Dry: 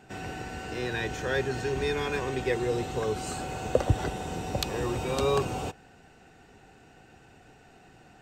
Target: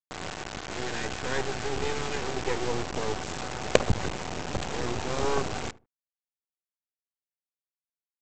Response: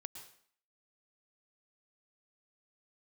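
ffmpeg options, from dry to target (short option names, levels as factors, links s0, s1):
-filter_complex "[0:a]equalizer=f=4500:t=o:w=1.1:g=-10.5,aresample=16000,acrusher=bits=3:dc=4:mix=0:aa=0.000001,aresample=44100,asplit=2[s0][s1];[s1]adelay=75,lowpass=f=890:p=1,volume=0.126,asplit=2[s2][s3];[s3]adelay=75,lowpass=f=890:p=1,volume=0.22[s4];[s0][s2][s4]amix=inputs=3:normalize=0,volume=1.33"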